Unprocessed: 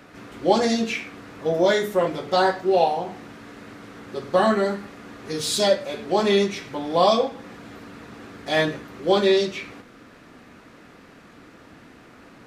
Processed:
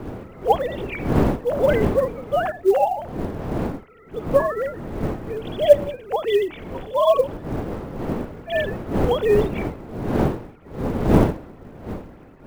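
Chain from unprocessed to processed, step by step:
three sine waves on the formant tracks
wind on the microphone 380 Hz −26 dBFS
floating-point word with a short mantissa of 4 bits

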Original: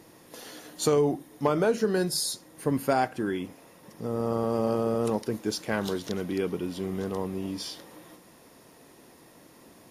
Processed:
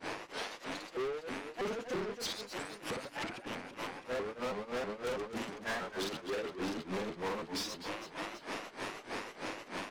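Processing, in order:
low-pass filter 7,500 Hz 12 dB per octave
output level in coarse steps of 20 dB
hum with harmonics 100 Hz, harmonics 27, −63 dBFS −1 dB per octave
mid-hump overdrive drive 35 dB, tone 3,200 Hz, clips at −23 dBFS
granular cloud 163 ms, grains 3.2 per second, pitch spread up and down by 0 semitones
on a send: reverse bouncing-ball delay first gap 50 ms, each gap 1.6×, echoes 5
on the sum: gain into a clipping stage and back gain 32.5 dB
pitch modulation by a square or saw wave saw up 3.1 Hz, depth 250 cents
level −1 dB

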